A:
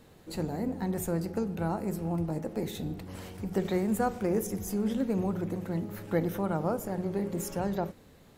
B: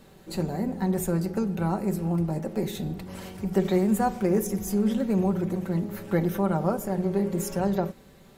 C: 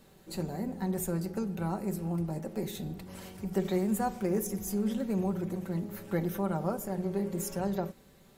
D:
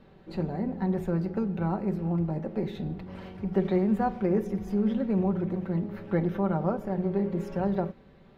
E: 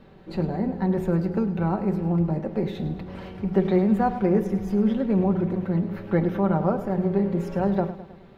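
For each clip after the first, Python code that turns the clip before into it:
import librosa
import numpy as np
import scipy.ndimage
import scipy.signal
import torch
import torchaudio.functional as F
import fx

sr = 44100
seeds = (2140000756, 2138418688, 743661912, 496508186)

y1 = x + 0.49 * np.pad(x, (int(5.2 * sr / 1000.0), 0))[:len(x)]
y1 = y1 * 10.0 ** (3.0 / 20.0)
y2 = fx.high_shelf(y1, sr, hz=5200.0, db=5.0)
y2 = y2 * 10.0 ** (-6.5 / 20.0)
y3 = fx.air_absorb(y2, sr, metres=340.0)
y3 = y3 * 10.0 ** (5.0 / 20.0)
y4 = fx.echo_feedback(y3, sr, ms=105, feedback_pct=54, wet_db=-13.5)
y4 = y4 * 10.0 ** (4.5 / 20.0)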